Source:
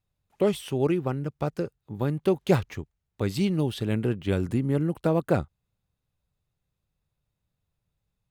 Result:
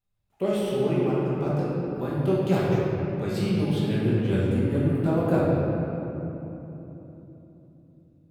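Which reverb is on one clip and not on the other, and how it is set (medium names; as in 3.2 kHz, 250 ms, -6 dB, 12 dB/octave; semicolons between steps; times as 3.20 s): simulated room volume 200 m³, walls hard, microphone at 1.2 m; trim -7.5 dB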